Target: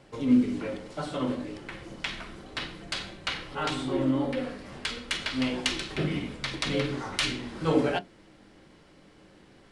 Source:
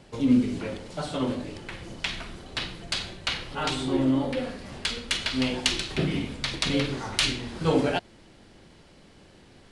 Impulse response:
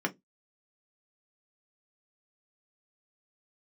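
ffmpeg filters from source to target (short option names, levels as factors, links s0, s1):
-filter_complex "[0:a]asplit=2[s0][s1];[1:a]atrim=start_sample=2205,lowpass=6700[s2];[s1][s2]afir=irnorm=-1:irlink=0,volume=0.299[s3];[s0][s3]amix=inputs=2:normalize=0,volume=0.562"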